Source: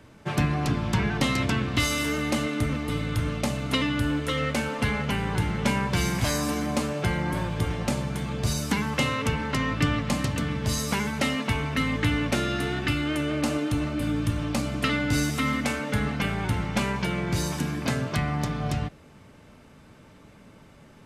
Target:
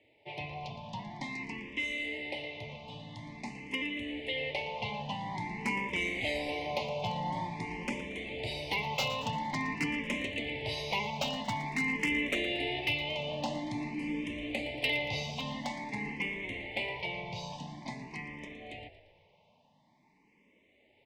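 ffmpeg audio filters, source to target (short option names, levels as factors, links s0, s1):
-filter_complex "[0:a]asuperstop=centerf=1400:order=8:qfactor=1.4,dynaudnorm=f=320:g=31:m=2.82,highpass=110,lowpass=2200,tiltshelf=f=670:g=-9.5,aeval=exprs='0.251*(abs(mod(val(0)/0.251+3,4)-2)-1)':c=same,asplit=2[s0][s1];[s1]asplit=5[s2][s3][s4][s5][s6];[s2]adelay=115,afreqshift=-60,volume=0.2[s7];[s3]adelay=230,afreqshift=-120,volume=0.104[s8];[s4]adelay=345,afreqshift=-180,volume=0.0537[s9];[s5]adelay=460,afreqshift=-240,volume=0.0282[s10];[s6]adelay=575,afreqshift=-300,volume=0.0146[s11];[s7][s8][s9][s10][s11]amix=inputs=5:normalize=0[s12];[s0][s12]amix=inputs=2:normalize=0,asplit=2[s13][s14];[s14]afreqshift=0.48[s15];[s13][s15]amix=inputs=2:normalize=1,volume=0.376"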